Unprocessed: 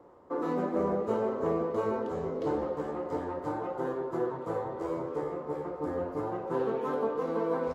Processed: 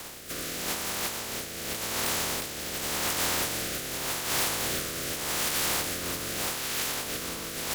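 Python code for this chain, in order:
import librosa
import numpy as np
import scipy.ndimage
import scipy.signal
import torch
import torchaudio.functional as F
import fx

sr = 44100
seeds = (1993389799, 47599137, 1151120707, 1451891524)

y = fx.spec_flatten(x, sr, power=0.12)
y = fx.over_compress(y, sr, threshold_db=-40.0, ratio=-1.0)
y = fx.fold_sine(y, sr, drive_db=9, ceiling_db=-22.0)
y = fx.rotary(y, sr, hz=0.85)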